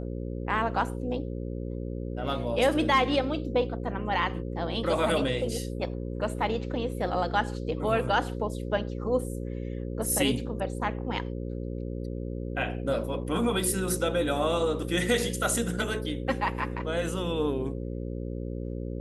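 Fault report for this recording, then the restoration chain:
buzz 60 Hz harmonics 9 -34 dBFS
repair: de-hum 60 Hz, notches 9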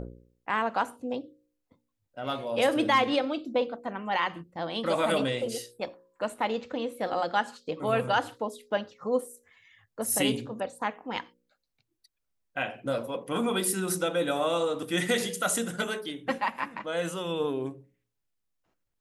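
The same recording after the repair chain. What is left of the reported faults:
nothing left

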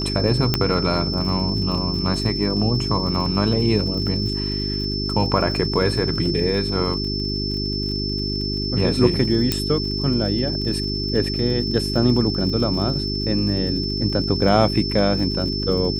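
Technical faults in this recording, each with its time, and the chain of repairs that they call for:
crackle 49 per s -30 dBFS
hum 50 Hz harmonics 8 -26 dBFS
whine 5.3 kHz -26 dBFS
0.54 s: pop -3 dBFS
9.52 s: pop -5 dBFS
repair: de-click; band-stop 5.3 kHz, Q 30; de-hum 50 Hz, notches 8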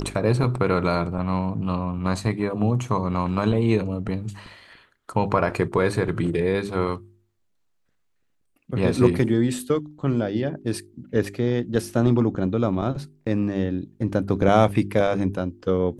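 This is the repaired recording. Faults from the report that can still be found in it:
nothing left

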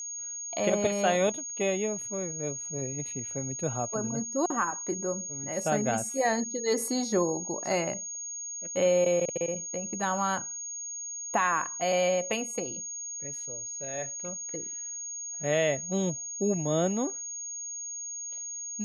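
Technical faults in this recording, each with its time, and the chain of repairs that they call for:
whine 6.6 kHz -35 dBFS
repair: band-stop 6.6 kHz, Q 30

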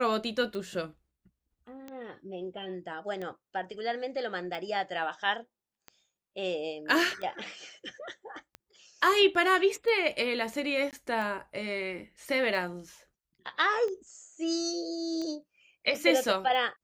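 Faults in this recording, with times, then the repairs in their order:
tick 45 rpm -26 dBFS
10.91–10.93 s: dropout 18 ms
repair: de-click; interpolate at 10.91 s, 18 ms

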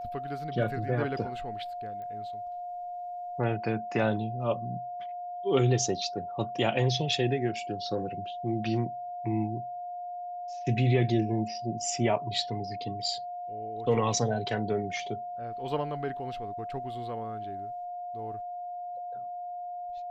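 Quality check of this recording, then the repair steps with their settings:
whine 710 Hz -35 dBFS
2.02 s: pop -33 dBFS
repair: de-click; band-stop 710 Hz, Q 30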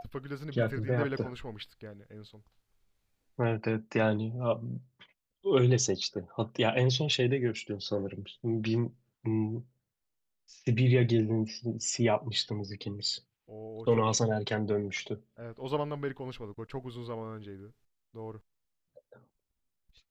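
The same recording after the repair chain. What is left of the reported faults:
nothing left

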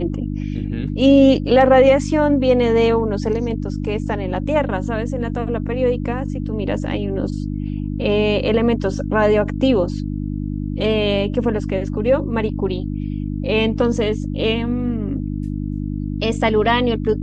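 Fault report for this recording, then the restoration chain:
hum 50 Hz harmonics 6 -24 dBFS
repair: de-hum 50 Hz, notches 6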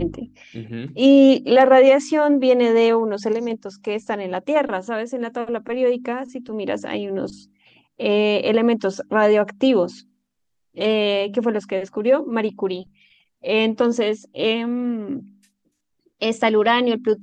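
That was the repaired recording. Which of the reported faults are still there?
nothing left

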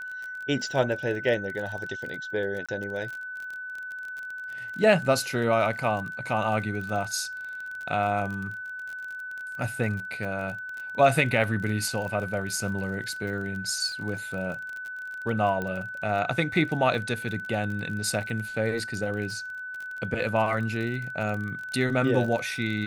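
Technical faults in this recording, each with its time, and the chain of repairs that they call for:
crackle 35 per s -33 dBFS
whine 1.5 kHz -34 dBFS
2.66–2.69 s: dropout 26 ms
15.62 s: pop -19 dBFS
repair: de-click; band-stop 1.5 kHz, Q 30; interpolate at 2.66 s, 26 ms

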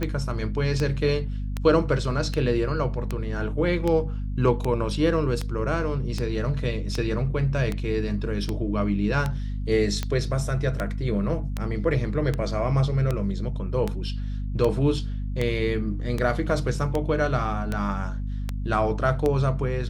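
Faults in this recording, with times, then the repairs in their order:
hum 50 Hz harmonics 5 -29 dBFS
tick 78 rpm -13 dBFS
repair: de-click; de-hum 50 Hz, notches 5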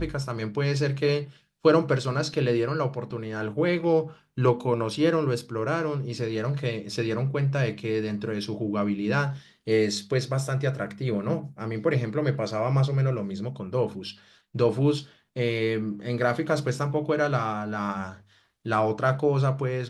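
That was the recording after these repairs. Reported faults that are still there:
nothing left

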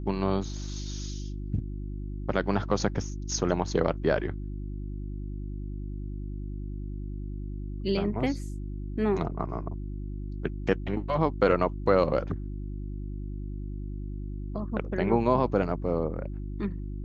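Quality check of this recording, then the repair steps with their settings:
hum 50 Hz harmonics 7 -35 dBFS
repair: de-hum 50 Hz, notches 7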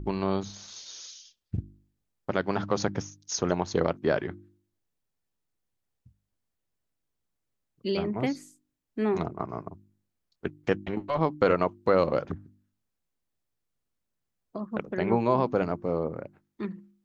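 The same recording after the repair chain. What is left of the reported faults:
nothing left

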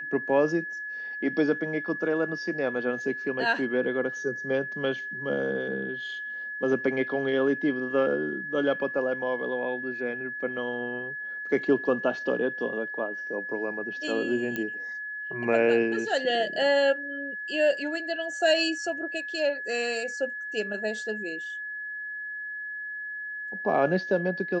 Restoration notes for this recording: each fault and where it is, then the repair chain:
whine 1.7 kHz -33 dBFS
14.56 s: pop -17 dBFS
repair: de-click; band-stop 1.7 kHz, Q 30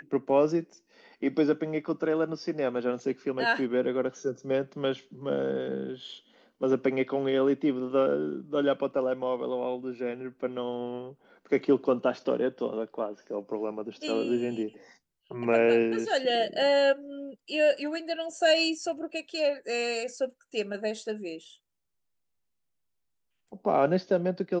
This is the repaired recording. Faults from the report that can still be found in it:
nothing left

